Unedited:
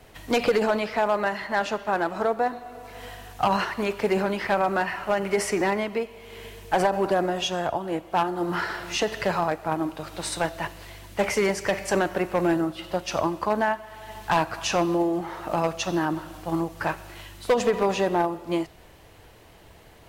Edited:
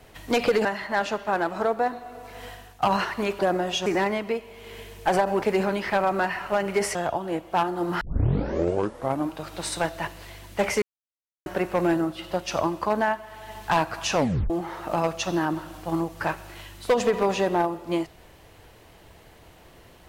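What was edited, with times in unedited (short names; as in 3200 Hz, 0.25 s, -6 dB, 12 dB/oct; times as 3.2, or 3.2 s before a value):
0.65–1.25 cut
3.08–3.42 fade out, to -12 dB
3.99–5.52 swap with 7.08–7.55
8.61 tape start 1.28 s
11.42–12.06 mute
14.76 tape stop 0.34 s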